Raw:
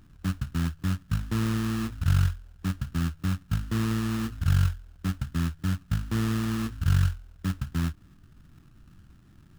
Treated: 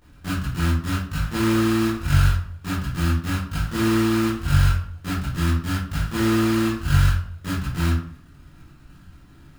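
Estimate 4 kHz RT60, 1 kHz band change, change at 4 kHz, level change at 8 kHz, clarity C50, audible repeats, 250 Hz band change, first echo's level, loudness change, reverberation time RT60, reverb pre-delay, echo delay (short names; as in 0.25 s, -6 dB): 0.35 s, +10.0 dB, +9.0 dB, +8.0 dB, 2.0 dB, none, +7.5 dB, none, +6.0 dB, 0.55 s, 19 ms, none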